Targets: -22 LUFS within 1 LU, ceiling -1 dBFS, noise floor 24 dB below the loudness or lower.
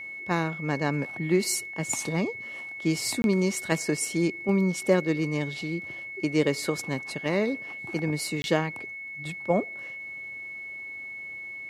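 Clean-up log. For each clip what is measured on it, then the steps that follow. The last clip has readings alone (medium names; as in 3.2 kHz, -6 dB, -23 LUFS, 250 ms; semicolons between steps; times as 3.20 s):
dropouts 2; longest dropout 21 ms; steady tone 2.2 kHz; tone level -36 dBFS; loudness -28.5 LUFS; peak level -8.0 dBFS; loudness target -22.0 LUFS
-> interpolate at 3.22/8.42 s, 21 ms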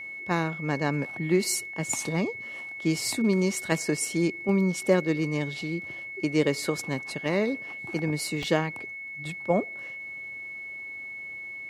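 dropouts 0; steady tone 2.2 kHz; tone level -36 dBFS
-> band-stop 2.2 kHz, Q 30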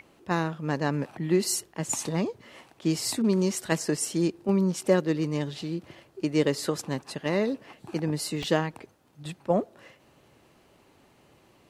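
steady tone not found; loudness -28.0 LUFS; peak level -8.5 dBFS; loudness target -22.0 LUFS
-> trim +6 dB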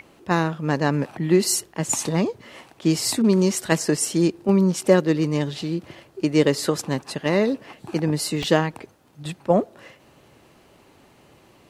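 loudness -22.0 LUFS; peak level -2.5 dBFS; noise floor -55 dBFS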